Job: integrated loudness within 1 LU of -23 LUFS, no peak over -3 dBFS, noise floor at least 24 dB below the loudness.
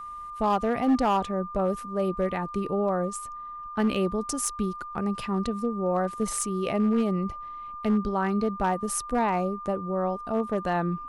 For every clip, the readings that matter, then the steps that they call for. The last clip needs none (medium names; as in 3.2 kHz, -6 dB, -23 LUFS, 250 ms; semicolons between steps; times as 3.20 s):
clipped samples 0.8%; clipping level -17.5 dBFS; steady tone 1.2 kHz; tone level -36 dBFS; loudness -27.5 LUFS; peak level -17.5 dBFS; loudness target -23.0 LUFS
-> clip repair -17.5 dBFS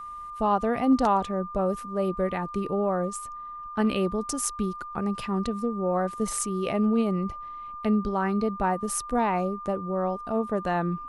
clipped samples 0.0%; steady tone 1.2 kHz; tone level -36 dBFS
-> band-stop 1.2 kHz, Q 30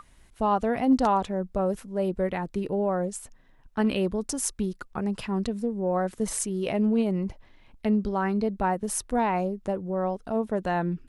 steady tone not found; loudness -27.5 LUFS; peak level -9.5 dBFS; loudness target -23.0 LUFS
-> trim +4.5 dB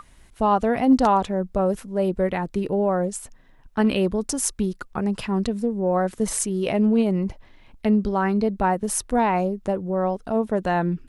loudness -23.0 LUFS; peak level -5.0 dBFS; noise floor -52 dBFS